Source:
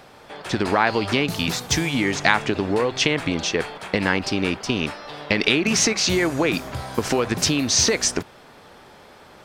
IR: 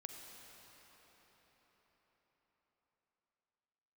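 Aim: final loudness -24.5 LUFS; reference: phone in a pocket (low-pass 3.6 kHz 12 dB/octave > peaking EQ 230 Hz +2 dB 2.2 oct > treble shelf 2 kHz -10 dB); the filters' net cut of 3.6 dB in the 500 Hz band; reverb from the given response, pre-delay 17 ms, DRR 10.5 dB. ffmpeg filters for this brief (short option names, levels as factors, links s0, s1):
-filter_complex "[0:a]equalizer=f=500:t=o:g=-5.5,asplit=2[s0][s1];[1:a]atrim=start_sample=2205,adelay=17[s2];[s1][s2]afir=irnorm=-1:irlink=0,volume=0.473[s3];[s0][s3]amix=inputs=2:normalize=0,lowpass=3600,equalizer=f=230:t=o:w=2.2:g=2,highshelf=f=2000:g=-10"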